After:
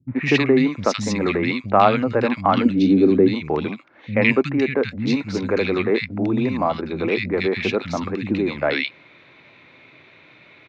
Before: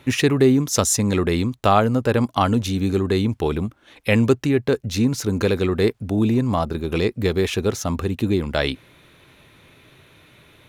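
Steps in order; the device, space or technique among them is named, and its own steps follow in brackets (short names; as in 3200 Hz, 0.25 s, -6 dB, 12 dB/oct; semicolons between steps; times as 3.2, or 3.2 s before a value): 2.57–3.2 ten-band EQ 125 Hz -4 dB, 250 Hz +11 dB, 500 Hz +5 dB, 1000 Hz -8 dB, 2000 Hz -6 dB, 8000 Hz -7 dB; kitchen radio (speaker cabinet 180–4300 Hz, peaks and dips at 420 Hz -4 dB, 2200 Hz +9 dB, 3200 Hz -6 dB); three bands offset in time lows, mids, highs 80/160 ms, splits 200/1700 Hz; gain +3 dB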